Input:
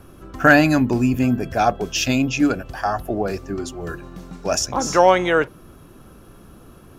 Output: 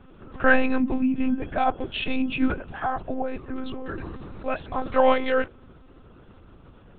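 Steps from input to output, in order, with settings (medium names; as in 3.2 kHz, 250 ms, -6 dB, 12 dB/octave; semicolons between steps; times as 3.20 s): monotone LPC vocoder at 8 kHz 260 Hz; 3.45–4.46 s: decay stretcher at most 20 dB/s; trim -4.5 dB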